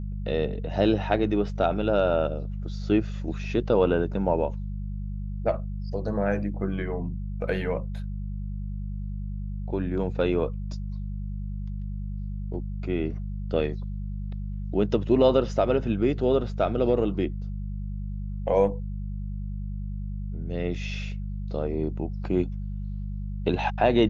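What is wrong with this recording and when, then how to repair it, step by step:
hum 50 Hz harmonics 4 -32 dBFS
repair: de-hum 50 Hz, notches 4

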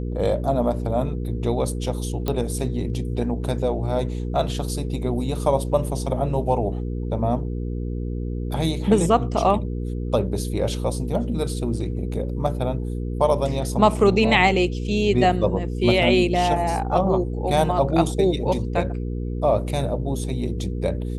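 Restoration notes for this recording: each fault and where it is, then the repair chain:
hum 60 Hz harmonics 8 -27 dBFS
2.28 s: pop -11 dBFS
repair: de-click; de-hum 60 Hz, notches 8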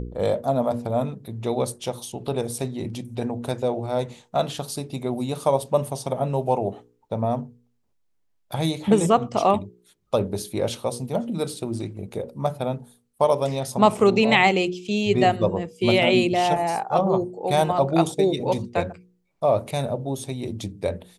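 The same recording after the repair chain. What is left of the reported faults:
nothing left

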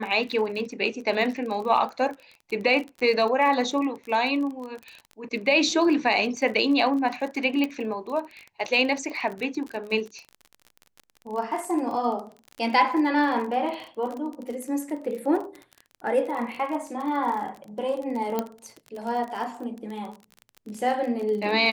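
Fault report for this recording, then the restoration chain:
crackle 34 per s -32 dBFS
7.64 s: pop -14 dBFS
18.39 s: pop -12 dBFS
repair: de-click

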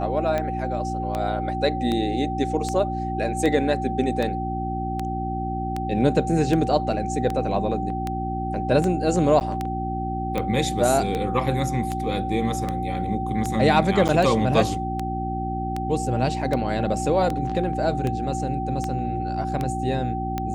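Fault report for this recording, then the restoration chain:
hum 60 Hz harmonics 6 -29 dBFS
tick 78 rpm -13 dBFS
whine 770 Hz -28 dBFS
9.40–9.41 s: dropout 9.5 ms
14.08–14.09 s: dropout 8.5 ms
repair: de-click; de-hum 60 Hz, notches 6; band-stop 770 Hz, Q 30; interpolate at 9.40 s, 9.5 ms; interpolate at 14.08 s, 8.5 ms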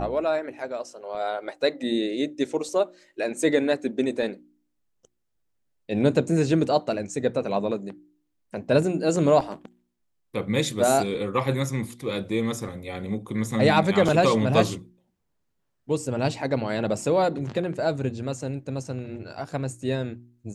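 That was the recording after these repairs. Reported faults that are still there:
nothing left

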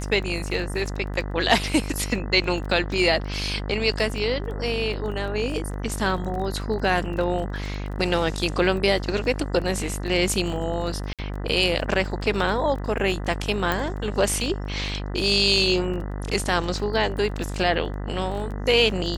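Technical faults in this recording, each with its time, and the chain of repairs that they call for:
buzz 50 Hz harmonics 40 -30 dBFS
crackle 21 per s -32 dBFS
11.13–11.19 s: dropout 57 ms
13.72 s: pop -10 dBFS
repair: de-click; de-hum 50 Hz, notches 40; interpolate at 11.13 s, 57 ms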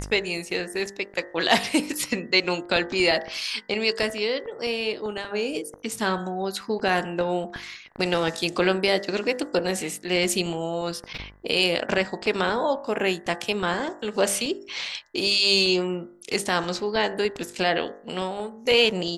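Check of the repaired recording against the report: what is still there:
nothing left

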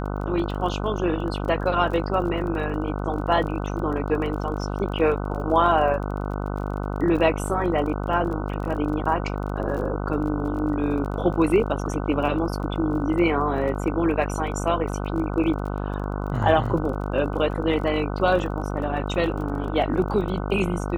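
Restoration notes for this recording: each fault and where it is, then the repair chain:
buzz 50 Hz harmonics 30 -28 dBFS
crackle 24 per s -33 dBFS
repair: de-click; de-hum 50 Hz, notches 30

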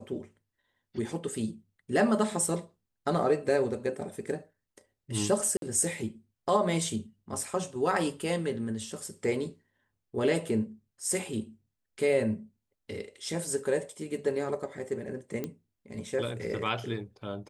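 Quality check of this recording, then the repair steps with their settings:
5.57–5.62 s: dropout 52 ms
15.44 s: pop -20 dBFS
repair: de-click; interpolate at 5.57 s, 52 ms

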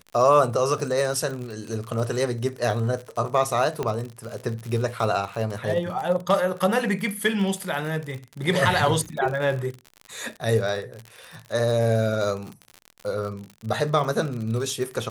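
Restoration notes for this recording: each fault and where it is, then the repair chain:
crackle 58 per s -30 dBFS
3.83 s: pop -14 dBFS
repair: de-click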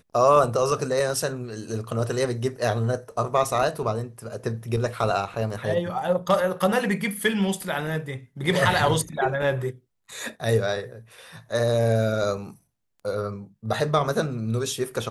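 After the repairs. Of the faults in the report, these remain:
3.83 s: pop

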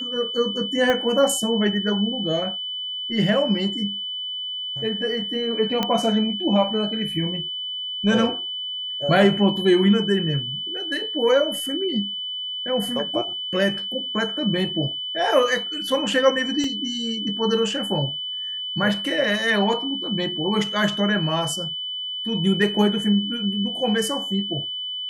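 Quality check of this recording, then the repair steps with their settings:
whine 3 kHz -27 dBFS
0.90 s: pop -9 dBFS
5.83 s: pop -8 dBFS
16.64 s: dropout 2.3 ms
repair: de-click; band-stop 3 kHz, Q 30; interpolate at 16.64 s, 2.3 ms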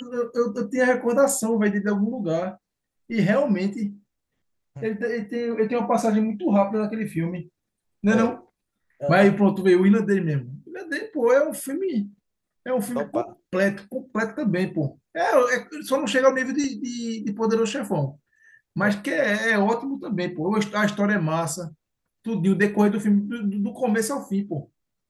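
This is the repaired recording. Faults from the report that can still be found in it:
0.90 s: pop

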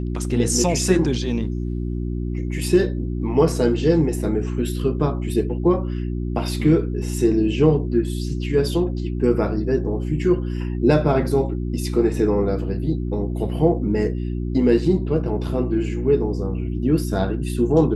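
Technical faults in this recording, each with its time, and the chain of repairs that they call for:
hum 60 Hz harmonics 6 -25 dBFS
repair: de-hum 60 Hz, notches 6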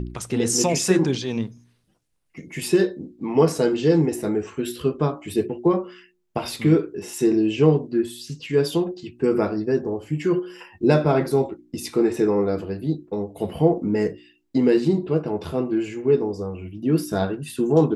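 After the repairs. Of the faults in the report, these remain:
nothing left

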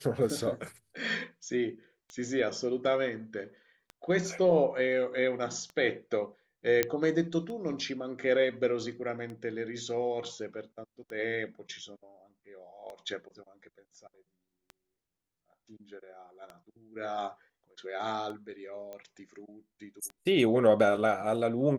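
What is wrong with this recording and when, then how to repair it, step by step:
tick 33 1/3 rpm
6.83 s: pop -10 dBFS
18.93 s: pop -30 dBFS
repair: de-click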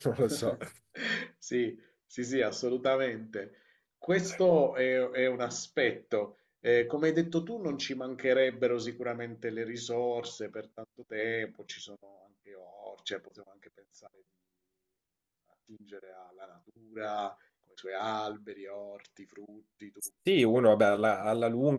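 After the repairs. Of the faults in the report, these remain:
nothing left

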